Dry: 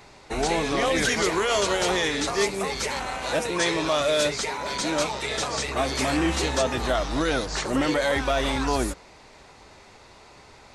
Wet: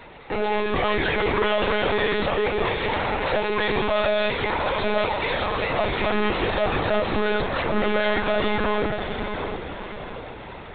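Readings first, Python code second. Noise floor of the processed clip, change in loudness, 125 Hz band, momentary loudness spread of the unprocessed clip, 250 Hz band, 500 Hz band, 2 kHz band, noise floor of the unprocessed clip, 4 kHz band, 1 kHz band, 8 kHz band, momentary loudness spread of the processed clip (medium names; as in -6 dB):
-38 dBFS, +1.0 dB, +2.0 dB, 5 LU, -0.5 dB, +3.0 dB, +2.5 dB, -50 dBFS, -1.5 dB, +3.0 dB, under -40 dB, 9 LU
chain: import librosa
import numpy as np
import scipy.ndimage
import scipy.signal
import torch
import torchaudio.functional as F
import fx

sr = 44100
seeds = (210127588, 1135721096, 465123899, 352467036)

y = fx.peak_eq(x, sr, hz=67.0, db=-11.0, octaves=2.0)
y = 10.0 ** (-26.0 / 20.0) * np.tanh(y / 10.0 ** (-26.0 / 20.0))
y = fx.air_absorb(y, sr, metres=120.0)
y = fx.echo_diffused(y, sr, ms=690, feedback_pct=48, wet_db=-6.0)
y = fx.lpc_monotone(y, sr, seeds[0], pitch_hz=210.0, order=16)
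y = F.gain(torch.from_numpy(y), 7.5).numpy()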